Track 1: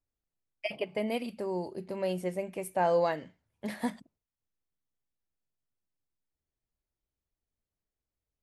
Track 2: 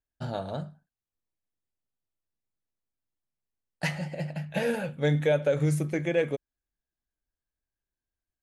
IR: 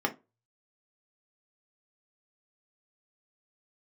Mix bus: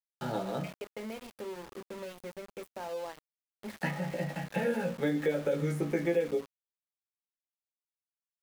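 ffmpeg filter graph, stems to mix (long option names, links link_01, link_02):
-filter_complex "[0:a]acompressor=threshold=-39dB:ratio=3,volume=-5.5dB,asplit=2[link_01][link_02];[link_02]volume=-10.5dB[link_03];[1:a]flanger=delay=15.5:depth=2.2:speed=0.26,volume=0dB,asplit=2[link_04][link_05];[link_05]volume=-4.5dB[link_06];[2:a]atrim=start_sample=2205[link_07];[link_03][link_06]amix=inputs=2:normalize=0[link_08];[link_08][link_07]afir=irnorm=-1:irlink=0[link_09];[link_01][link_04][link_09]amix=inputs=3:normalize=0,acrossover=split=420|2400[link_10][link_11][link_12];[link_10]acompressor=threshold=-30dB:ratio=4[link_13];[link_11]acompressor=threshold=-35dB:ratio=4[link_14];[link_12]acompressor=threshold=-53dB:ratio=4[link_15];[link_13][link_14][link_15]amix=inputs=3:normalize=0,aeval=exprs='val(0)*gte(abs(val(0)),0.00708)':channel_layout=same"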